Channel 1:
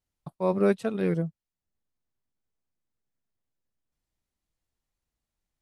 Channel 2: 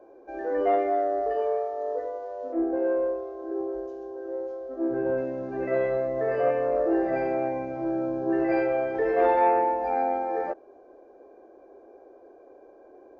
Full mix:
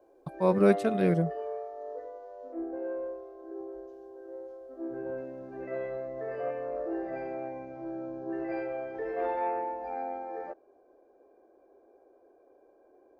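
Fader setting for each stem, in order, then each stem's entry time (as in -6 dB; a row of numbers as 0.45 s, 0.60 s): +1.0 dB, -10.0 dB; 0.00 s, 0.00 s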